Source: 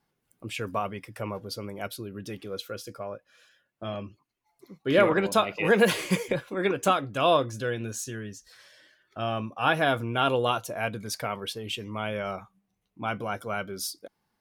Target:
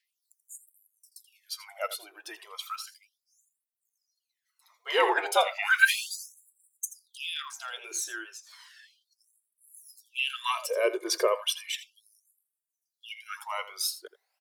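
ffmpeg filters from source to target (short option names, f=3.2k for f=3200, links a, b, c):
-filter_complex "[0:a]asettb=1/sr,asplit=3[a][b][c];[a]atrim=end=10.304[d];[b]atrim=start=10.3:end=11.75,asetpts=PTS-STARTPTS,afade=t=in:d=0.004:c=qsin,afade=t=out:st=1.446:d=0.004:c=qsin,aecho=1:1:1.7:0.96,atrim=end_sample=63945[e];[c]atrim=start=11.746[f];[d][e]acrossfade=d=0.004:c1=hsin:c2=qsin[g];[g][f]acrossfade=d=0.004:c1=qsin:c2=hsin,acrossover=split=360[h][i];[h]aeval=exprs='clip(val(0),-1,0.0133)':c=same[j];[j][i]amix=inputs=2:normalize=0,afreqshift=-100,aphaser=in_gain=1:out_gain=1:delay=1.5:decay=0.65:speed=0.27:type=triangular,asplit=2[k][l];[l]aecho=0:1:82:0.188[m];[k][m]amix=inputs=2:normalize=0,afftfilt=real='re*gte(b*sr/1024,310*pow(7500/310,0.5+0.5*sin(2*PI*0.34*pts/sr)))':imag='im*gte(b*sr/1024,310*pow(7500/310,0.5+0.5*sin(2*PI*0.34*pts/sr)))':win_size=1024:overlap=0.75"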